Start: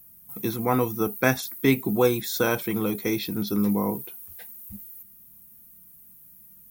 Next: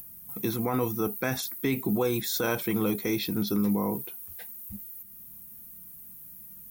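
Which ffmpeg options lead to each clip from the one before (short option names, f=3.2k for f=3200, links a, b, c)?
-af "alimiter=limit=-17.5dB:level=0:latency=1:release=45,acompressor=mode=upward:threshold=-39dB:ratio=2.5"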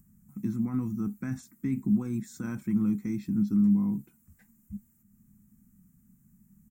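-af "firequalizer=gain_entry='entry(120,0);entry(220,6);entry(450,-23);entry(1200,-12);entry(2000,-13);entry(3400,-28);entry(7600,-7);entry(11000,-26)':delay=0.05:min_phase=1,volume=-1dB"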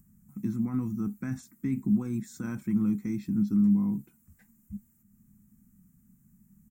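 -af anull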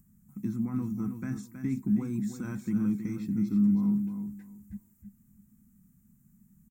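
-af "aecho=1:1:320|640|960:0.398|0.0876|0.0193,volume=-1.5dB"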